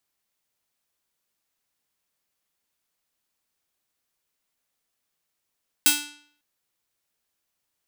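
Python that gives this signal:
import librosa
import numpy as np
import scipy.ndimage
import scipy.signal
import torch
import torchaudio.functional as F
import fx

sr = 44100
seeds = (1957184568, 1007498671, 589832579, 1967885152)

y = fx.pluck(sr, length_s=0.55, note=62, decay_s=0.59, pick=0.49, brightness='bright')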